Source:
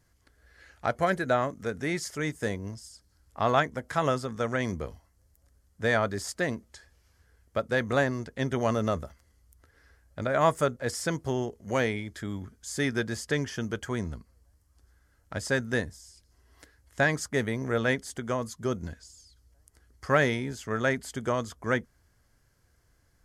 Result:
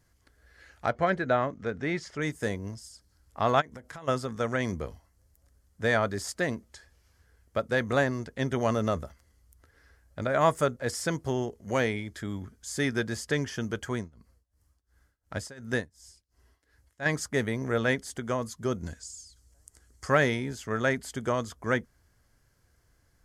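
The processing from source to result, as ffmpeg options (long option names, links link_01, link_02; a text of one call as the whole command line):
ffmpeg -i in.wav -filter_complex "[0:a]asettb=1/sr,asplit=3[link_01][link_02][link_03];[link_01]atrim=end=0.904[link_04];[link_02]atrim=start=0.9:end=2.22,asetpts=PTS-STARTPTS,afade=type=in:duration=0.004:curve=qsin,afade=type=out:start_time=1.316:duration=0.004:curve=qsin,lowpass=3900[link_05];[link_03]atrim=start=2.216[link_06];[link_04][link_05]acrossfade=duration=0.004:curve1=hsin:curve2=qsin[link_07];[link_07][link_06]acrossfade=duration=0.004:curve1=qsin:curve2=hsin,asplit=3[link_08][link_09][link_10];[link_08]afade=type=out:start_time=3.6:duration=0.02[link_11];[link_09]acompressor=threshold=-39dB:ratio=16:attack=3.2:release=140:knee=1:detection=peak,afade=type=in:start_time=3.6:duration=0.02,afade=type=out:start_time=4.07:duration=0.02[link_12];[link_10]afade=type=in:start_time=4.07:duration=0.02[link_13];[link_11][link_12][link_13]amix=inputs=3:normalize=0,asettb=1/sr,asplit=3[link_14][link_15][link_16];[link_14]atrim=end=13.944[link_17];[link_15]atrim=start=13.94:end=17.06,asetpts=PTS-STARTPTS,afade=type=in:duration=0.004:curve=qsin,afade=type=out:start_time=3.116:duration=0.004:curve=qsin,tremolo=f=2.8:d=0.94[link_18];[link_16]atrim=start=17.056[link_19];[link_17][link_18]acrossfade=duration=0.004:curve1=hsin:curve2=qsin[link_20];[link_20][link_19]acrossfade=duration=0.004:curve1=qsin:curve2=hsin,asettb=1/sr,asplit=3[link_21][link_22][link_23];[link_21]atrim=end=18.864[link_24];[link_22]atrim=start=18.86:end=20.1,asetpts=PTS-STARTPTS,afade=type=in:duration=0.004:curve=qsin,afade=type=out:start_time=1.236:duration=0.004:curve=qsin,equalizer=frequency=7600:width_type=o:width=0.91:gain=11[link_25];[link_23]atrim=start=20.096[link_26];[link_24][link_25]acrossfade=duration=0.004:curve1=hsin:curve2=qsin[link_27];[link_27][link_26]acrossfade=duration=0.004:curve1=qsin:curve2=hsin" out.wav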